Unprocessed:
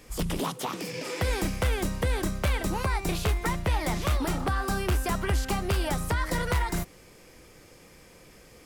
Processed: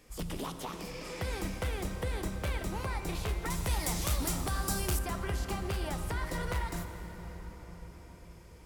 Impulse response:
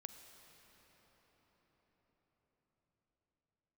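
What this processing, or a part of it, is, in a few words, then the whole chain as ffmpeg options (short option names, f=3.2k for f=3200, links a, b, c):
cathedral: -filter_complex "[1:a]atrim=start_sample=2205[a];[0:a][a]afir=irnorm=-1:irlink=0,asettb=1/sr,asplit=3[b][c][d];[b]atrim=end=3.504[e];[c]atrim=start=3.5:end=4.99,asetpts=PTS-STARTPTS,afade=t=in:d=0.004:c=qsin,afade=t=out:st=1.486:d=0.004:c=qsin,bass=f=250:g=2,treble=f=4k:g=14[f];[d]atrim=start=4.986[g];[e][f]acrossfade=d=0.004:c1=hsin:c2=qsin[h];[h][g]acrossfade=d=0.004:c1=qsin:c2=hsin,volume=-2.5dB"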